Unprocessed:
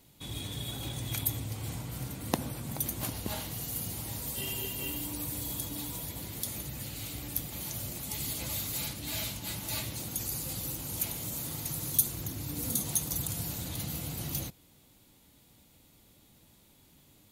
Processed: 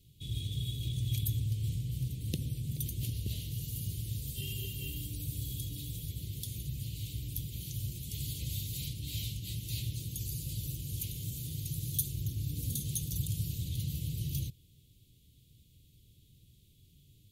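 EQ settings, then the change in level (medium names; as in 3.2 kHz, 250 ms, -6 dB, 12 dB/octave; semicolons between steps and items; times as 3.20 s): elliptic band-stop 420–3100 Hz, stop band 70 dB; resonant low shelf 180 Hz +11 dB, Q 1.5; peaking EQ 1.6 kHz +14.5 dB 1.6 oct; -7.5 dB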